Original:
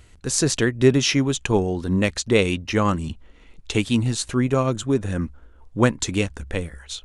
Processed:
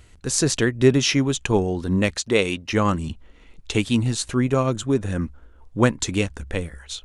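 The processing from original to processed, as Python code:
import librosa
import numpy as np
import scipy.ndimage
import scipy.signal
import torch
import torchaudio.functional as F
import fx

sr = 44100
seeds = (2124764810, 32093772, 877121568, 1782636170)

y = fx.low_shelf(x, sr, hz=160.0, db=-10.5, at=(2.15, 2.73))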